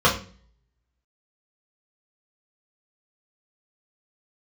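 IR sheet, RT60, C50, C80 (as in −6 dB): 0.40 s, 9.5 dB, 14.5 dB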